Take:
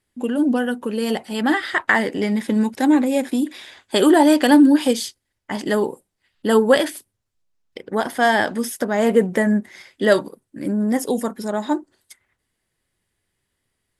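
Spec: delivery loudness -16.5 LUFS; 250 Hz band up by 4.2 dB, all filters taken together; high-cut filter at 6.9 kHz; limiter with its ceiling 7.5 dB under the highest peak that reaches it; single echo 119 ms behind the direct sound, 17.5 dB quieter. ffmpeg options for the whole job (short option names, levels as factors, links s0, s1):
-af "lowpass=6900,equalizer=f=250:t=o:g=5,alimiter=limit=0.398:level=0:latency=1,aecho=1:1:119:0.133,volume=1.26"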